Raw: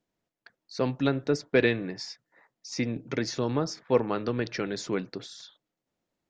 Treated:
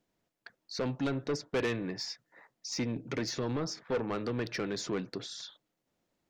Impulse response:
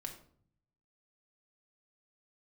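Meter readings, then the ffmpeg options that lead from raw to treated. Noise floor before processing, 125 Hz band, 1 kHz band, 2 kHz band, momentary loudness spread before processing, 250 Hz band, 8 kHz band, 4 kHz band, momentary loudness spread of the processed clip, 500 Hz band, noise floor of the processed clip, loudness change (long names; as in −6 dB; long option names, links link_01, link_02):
below −85 dBFS, −5.0 dB, −5.5 dB, −7.0 dB, 16 LU, −5.0 dB, −0.5 dB, −1.5 dB, 10 LU, −7.0 dB, −84 dBFS, −6.0 dB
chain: -filter_complex "[0:a]asplit=2[link_01][link_02];[link_02]acompressor=threshold=-39dB:ratio=6,volume=1dB[link_03];[link_01][link_03]amix=inputs=2:normalize=0,asoftclip=type=tanh:threshold=-22.5dB,volume=-3.5dB"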